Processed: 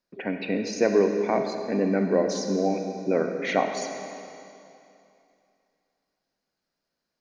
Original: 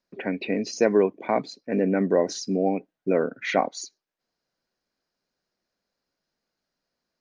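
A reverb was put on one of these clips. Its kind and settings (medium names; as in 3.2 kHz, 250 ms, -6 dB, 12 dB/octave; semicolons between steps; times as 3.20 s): algorithmic reverb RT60 2.7 s, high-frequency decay 0.95×, pre-delay 10 ms, DRR 5 dB; trim -1.5 dB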